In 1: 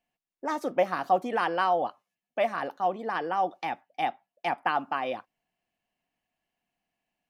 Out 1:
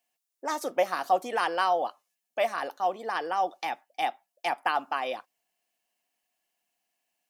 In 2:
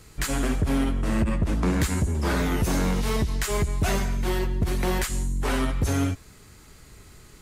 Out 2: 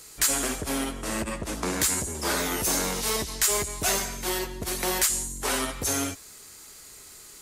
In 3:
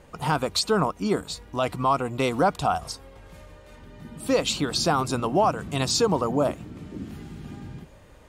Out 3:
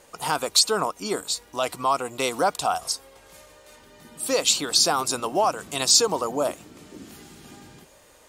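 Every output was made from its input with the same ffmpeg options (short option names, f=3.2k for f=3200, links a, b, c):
-af "bass=f=250:g=-14,treble=f=4k:g=11"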